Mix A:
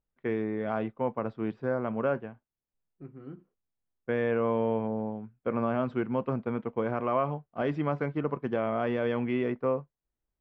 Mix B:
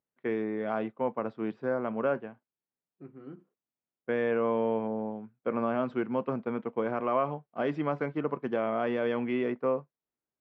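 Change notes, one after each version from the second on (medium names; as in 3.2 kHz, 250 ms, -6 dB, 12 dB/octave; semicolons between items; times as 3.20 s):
master: add high-pass 180 Hz 12 dB/octave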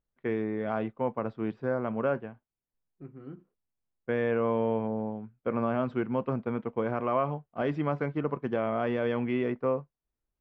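master: remove high-pass 180 Hz 12 dB/octave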